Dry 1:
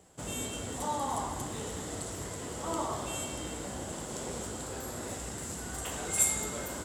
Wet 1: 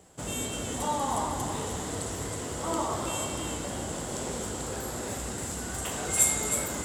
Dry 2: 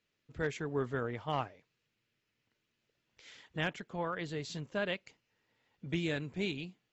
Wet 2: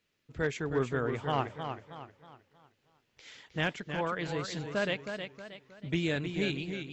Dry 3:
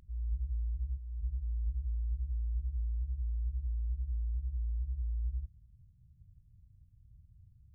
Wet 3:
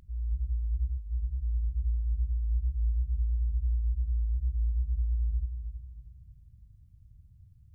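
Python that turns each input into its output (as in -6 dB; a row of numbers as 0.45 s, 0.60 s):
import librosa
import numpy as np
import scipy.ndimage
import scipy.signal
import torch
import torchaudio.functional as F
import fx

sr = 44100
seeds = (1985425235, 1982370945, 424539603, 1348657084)

y = fx.echo_warbled(x, sr, ms=315, feedback_pct=39, rate_hz=2.8, cents=77, wet_db=-7.5)
y = y * 10.0 ** (3.5 / 20.0)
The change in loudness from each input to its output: +4.0 LU, +3.5 LU, +5.5 LU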